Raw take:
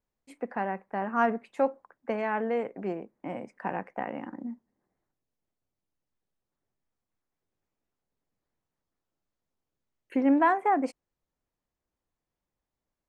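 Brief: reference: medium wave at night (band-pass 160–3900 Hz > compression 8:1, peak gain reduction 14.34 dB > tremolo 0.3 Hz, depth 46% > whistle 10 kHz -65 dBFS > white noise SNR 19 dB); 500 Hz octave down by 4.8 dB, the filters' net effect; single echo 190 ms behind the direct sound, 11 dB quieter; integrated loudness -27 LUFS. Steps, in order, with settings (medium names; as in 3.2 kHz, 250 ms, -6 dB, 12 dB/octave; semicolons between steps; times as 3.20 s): band-pass 160–3900 Hz; peaking EQ 500 Hz -6 dB; delay 190 ms -11 dB; compression 8:1, threshold -34 dBFS; tremolo 0.3 Hz, depth 46%; whistle 10 kHz -65 dBFS; white noise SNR 19 dB; trim +15 dB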